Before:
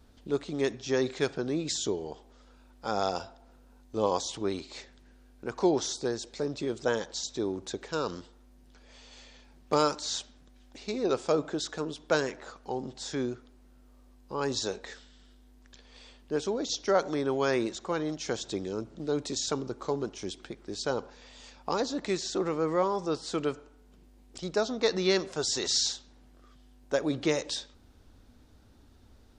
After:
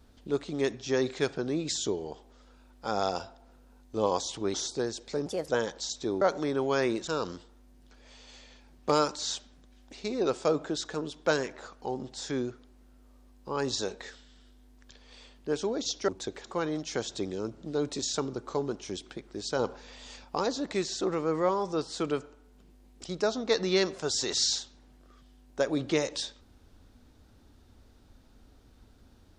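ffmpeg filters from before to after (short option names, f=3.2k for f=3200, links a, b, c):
-filter_complex "[0:a]asplit=10[a][b][c][d][e][f][g][h][i][j];[a]atrim=end=4.542[k];[b]atrim=start=5.798:end=6.524[l];[c]atrim=start=6.52:end=6.82,asetpts=PTS-STARTPTS,asetrate=59094,aresample=44100,atrim=end_sample=9873,asetpts=PTS-STARTPTS[m];[d]atrim=start=6.816:end=7.552[n];[e]atrim=start=16.918:end=17.782[o];[f]atrim=start=7.908:end=16.922[p];[g]atrim=start=7.548:end=7.912[q];[h]atrim=start=17.778:end=20.932[r];[i]atrim=start=20.928:end=21.582,asetpts=PTS-STARTPTS,volume=3.5dB[s];[j]atrim=start=21.578[t];[k][l]acrossfade=d=0.004:c1=hsin:c2=hsin[u];[u][m]acrossfade=d=0.004:c1=hsin:c2=hsin[v];[v][n]acrossfade=d=0.004:c1=hsin:c2=hsin[w];[w][o]acrossfade=d=0.004:c1=hsin:c2=hsin[x];[x][p]acrossfade=d=0.004:c1=hsin:c2=hsin[y];[y][q]acrossfade=d=0.004:c1=hsin:c2=hsin[z];[z][r]acrossfade=d=0.004:c1=hsin:c2=hsin[aa];[aa][s]acrossfade=d=0.004:c1=hsin:c2=hsin[ab];[ab][t]acrossfade=d=0.004:c1=hsin:c2=hsin"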